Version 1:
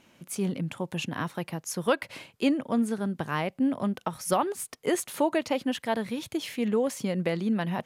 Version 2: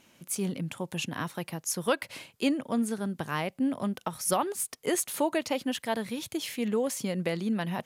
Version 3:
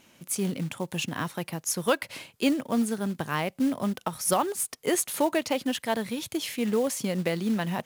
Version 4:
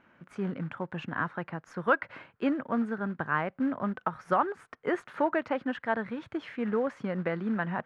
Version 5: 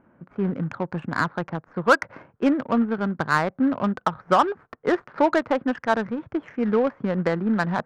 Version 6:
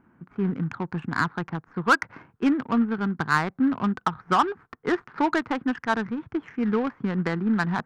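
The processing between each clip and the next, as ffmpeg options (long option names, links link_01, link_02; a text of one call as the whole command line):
ffmpeg -i in.wav -af "highshelf=frequency=4200:gain=8,volume=-2.5dB" out.wav
ffmpeg -i in.wav -af "acrusher=bits=5:mode=log:mix=0:aa=0.000001,volume=2.5dB" out.wav
ffmpeg -i in.wav -af "lowpass=frequency=1500:width_type=q:width=3,volume=-4dB" out.wav
ffmpeg -i in.wav -af "adynamicsmooth=sensitivity=3:basefreq=890,volume=8dB" out.wav
ffmpeg -i in.wav -af "equalizer=frequency=570:width=2.9:gain=-14" out.wav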